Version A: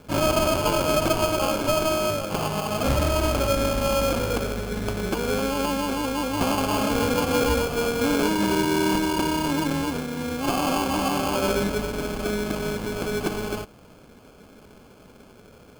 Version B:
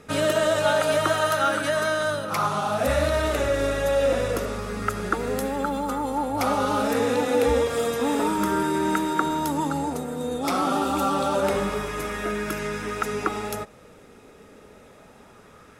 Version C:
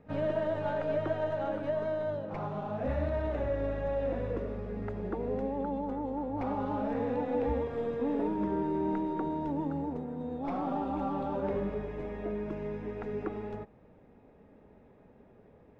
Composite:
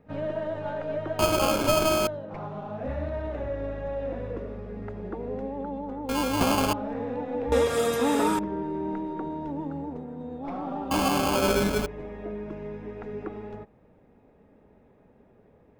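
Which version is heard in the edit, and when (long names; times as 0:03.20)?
C
0:01.19–0:02.07: punch in from A
0:06.09–0:06.73: punch in from A
0:07.52–0:08.39: punch in from B
0:10.91–0:11.86: punch in from A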